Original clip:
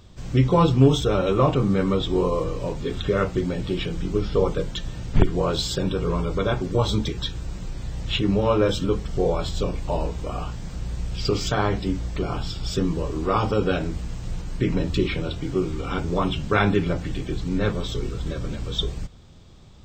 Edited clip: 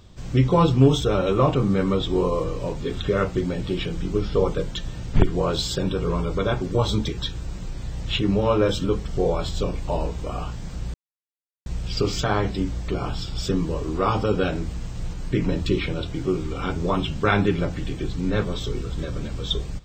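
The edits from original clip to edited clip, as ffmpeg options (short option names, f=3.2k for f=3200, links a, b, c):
-filter_complex "[0:a]asplit=2[a][b];[a]atrim=end=10.94,asetpts=PTS-STARTPTS,afade=t=out:st=10.936:d=0.004:c=hsin,apad=pad_dur=0.72[c];[b]atrim=start=10.94,asetpts=PTS-STARTPTS,afade=t=in:d=0.004:c=hsin[d];[c][d]concat=n=2:v=0:a=1"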